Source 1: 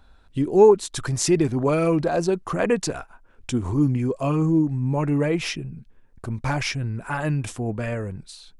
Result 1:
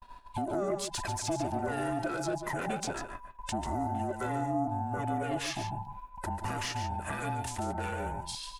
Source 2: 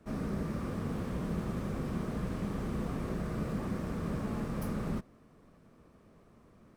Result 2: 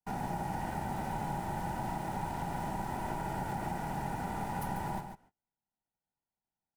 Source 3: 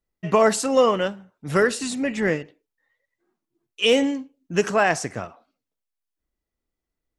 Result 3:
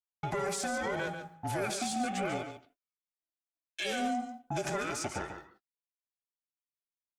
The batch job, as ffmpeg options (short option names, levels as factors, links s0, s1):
-filter_complex "[0:a]afftfilt=real='real(if(between(b,1,1008),(2*floor((b-1)/24)+1)*24-b,b),0)':imag='imag(if(between(b,1,1008),(2*floor((b-1)/24)+1)*24-b,b),0)*if(between(b,1,1008),-1,1)':win_size=2048:overlap=0.75,highpass=100,agate=range=0.01:threshold=0.00282:ratio=16:detection=peak,highshelf=f=7400:g=7,asplit=2[s0][s1];[s1]acompressor=threshold=0.0316:ratio=10,volume=0.891[s2];[s0][s2]amix=inputs=2:normalize=0,alimiter=limit=0.211:level=0:latency=1:release=65,acrossover=split=170|7100[s3][s4][s5];[s3]acompressor=threshold=0.0355:ratio=4[s6];[s4]acompressor=threshold=0.0282:ratio=4[s7];[s5]acompressor=threshold=0.00631:ratio=4[s8];[s6][s7][s8]amix=inputs=3:normalize=0,asoftclip=type=tanh:threshold=0.075,aeval=exprs='val(0)*sin(2*PI*490*n/s)':c=same,aecho=1:1:143:0.376"